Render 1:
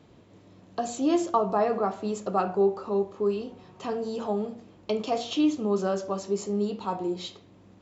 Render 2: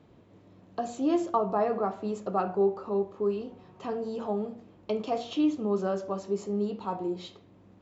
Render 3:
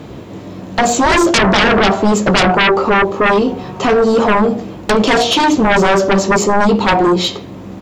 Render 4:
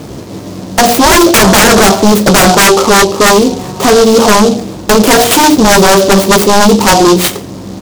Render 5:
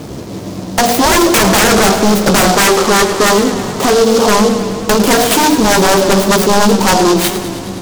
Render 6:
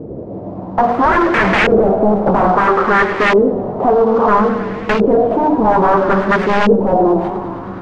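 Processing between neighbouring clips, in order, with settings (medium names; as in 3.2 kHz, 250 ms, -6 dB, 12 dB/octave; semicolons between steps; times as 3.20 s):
treble shelf 3.7 kHz -10 dB; trim -2 dB
treble shelf 5.7 kHz +7.5 dB; doubling 15 ms -10.5 dB; sine folder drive 16 dB, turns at -13.5 dBFS; trim +6 dB
delay time shaken by noise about 4.6 kHz, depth 0.071 ms; trim +6 dB
in parallel at +0.5 dB: compression, threshold -13 dBFS, peak gain reduction 9 dB; on the sum: modulated delay 105 ms, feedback 77%, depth 115 cents, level -12 dB; trim -7.5 dB
LFO low-pass saw up 0.6 Hz 450–2400 Hz; trim -4.5 dB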